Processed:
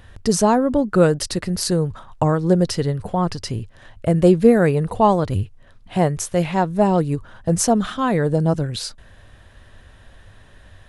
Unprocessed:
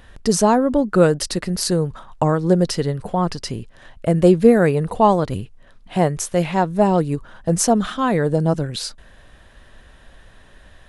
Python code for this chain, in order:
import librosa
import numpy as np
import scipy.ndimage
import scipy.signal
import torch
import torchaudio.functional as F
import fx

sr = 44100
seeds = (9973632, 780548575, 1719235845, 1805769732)

y = fx.peak_eq(x, sr, hz=96.0, db=11.0, octaves=0.57)
y = y * librosa.db_to_amplitude(-1.0)